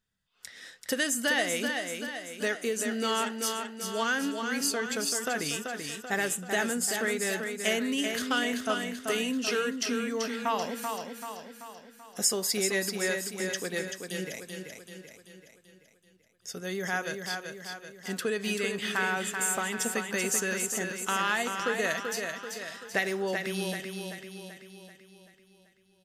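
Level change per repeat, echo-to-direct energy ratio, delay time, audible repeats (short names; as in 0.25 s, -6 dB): -5.5 dB, -4.0 dB, 0.385 s, 6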